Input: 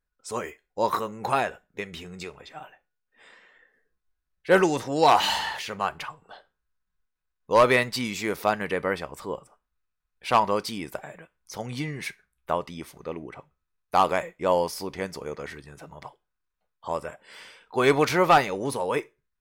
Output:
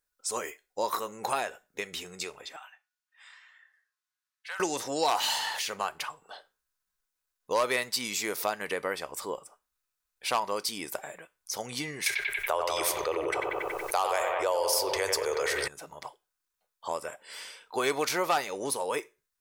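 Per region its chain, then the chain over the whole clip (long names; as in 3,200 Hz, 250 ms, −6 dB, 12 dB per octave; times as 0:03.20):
0:02.56–0:04.60: high-pass filter 1,000 Hz 24 dB per octave + downward compressor 8 to 1, threshold −34 dBFS + high-shelf EQ 7,500 Hz −12 dB
0:12.06–0:15.68: Chebyshev band-stop filter 110–410 Hz + bucket-brigade delay 93 ms, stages 2,048, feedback 56%, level −9.5 dB + envelope flattener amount 70%
whole clip: bass and treble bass −12 dB, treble +10 dB; downward compressor 2 to 1, threshold −30 dBFS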